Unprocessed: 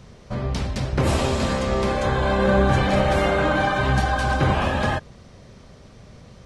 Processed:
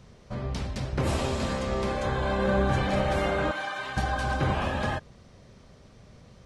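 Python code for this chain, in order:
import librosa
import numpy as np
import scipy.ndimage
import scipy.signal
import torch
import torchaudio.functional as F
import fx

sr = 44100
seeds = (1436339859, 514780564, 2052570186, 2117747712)

y = fx.highpass(x, sr, hz=1400.0, slope=6, at=(3.51, 3.97))
y = y * 10.0 ** (-6.5 / 20.0)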